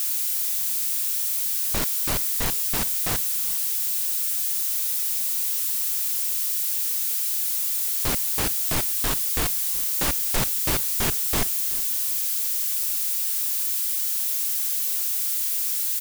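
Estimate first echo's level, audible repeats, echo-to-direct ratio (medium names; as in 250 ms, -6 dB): -20.0 dB, 2, -19.5 dB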